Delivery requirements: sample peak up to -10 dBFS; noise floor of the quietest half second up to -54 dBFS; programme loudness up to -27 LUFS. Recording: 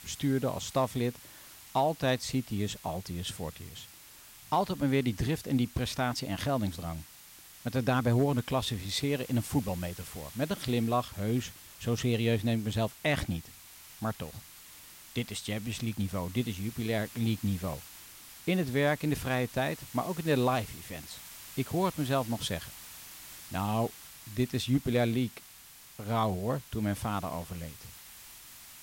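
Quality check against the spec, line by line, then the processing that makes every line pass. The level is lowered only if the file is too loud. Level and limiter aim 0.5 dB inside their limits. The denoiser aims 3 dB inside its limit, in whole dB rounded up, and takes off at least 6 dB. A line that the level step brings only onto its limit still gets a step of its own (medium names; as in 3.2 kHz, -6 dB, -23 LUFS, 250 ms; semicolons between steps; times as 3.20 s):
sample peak -17.5 dBFS: pass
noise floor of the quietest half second -53 dBFS: fail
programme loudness -32.0 LUFS: pass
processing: noise reduction 6 dB, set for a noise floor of -53 dBFS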